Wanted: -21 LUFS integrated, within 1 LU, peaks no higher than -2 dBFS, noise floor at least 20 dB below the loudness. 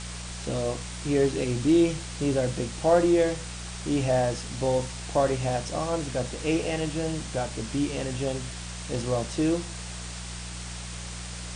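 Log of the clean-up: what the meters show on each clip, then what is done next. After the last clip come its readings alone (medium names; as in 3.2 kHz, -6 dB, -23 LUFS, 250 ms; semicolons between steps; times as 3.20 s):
hum 60 Hz; highest harmonic 180 Hz; hum level -37 dBFS; noise floor -37 dBFS; noise floor target -48 dBFS; loudness -27.5 LUFS; peak level -10.5 dBFS; loudness target -21.0 LUFS
-> de-hum 60 Hz, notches 3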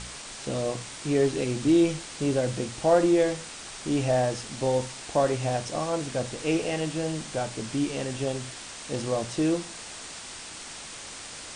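hum not found; noise floor -41 dBFS; noise floor target -48 dBFS
-> noise reduction 7 dB, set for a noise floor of -41 dBFS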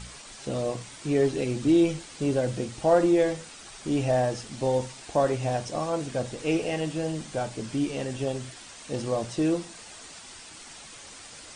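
noise floor -46 dBFS; noise floor target -48 dBFS
-> noise reduction 6 dB, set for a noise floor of -46 dBFS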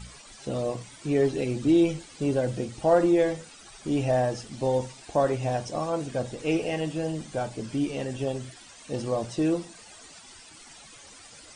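noise floor -49 dBFS; loudness -27.5 LUFS; peak level -10.5 dBFS; loudness target -21.0 LUFS
-> trim +6.5 dB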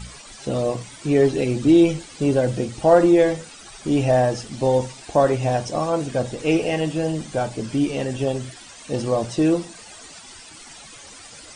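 loudness -21.0 LUFS; peak level -4.0 dBFS; noise floor -43 dBFS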